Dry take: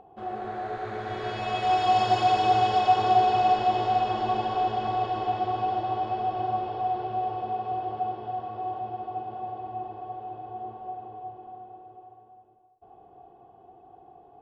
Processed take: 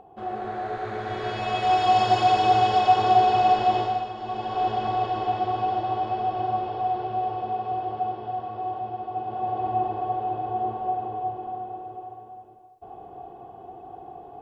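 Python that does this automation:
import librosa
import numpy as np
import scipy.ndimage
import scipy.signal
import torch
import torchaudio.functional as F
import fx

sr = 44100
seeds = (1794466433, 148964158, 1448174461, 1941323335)

y = fx.gain(x, sr, db=fx.line((3.78, 2.5), (4.14, -8.0), (4.67, 2.0), (9.09, 2.0), (9.66, 10.0)))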